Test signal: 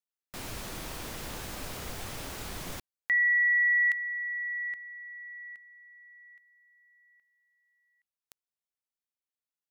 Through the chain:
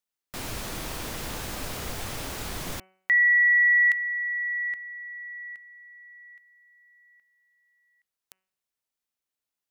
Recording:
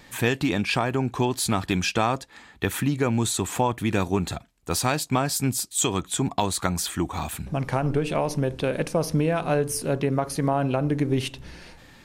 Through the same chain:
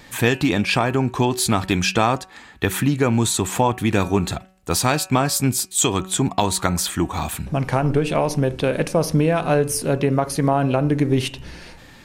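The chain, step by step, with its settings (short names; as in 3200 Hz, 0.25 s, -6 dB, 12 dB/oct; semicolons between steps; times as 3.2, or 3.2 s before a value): de-hum 187.9 Hz, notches 16; gain +5 dB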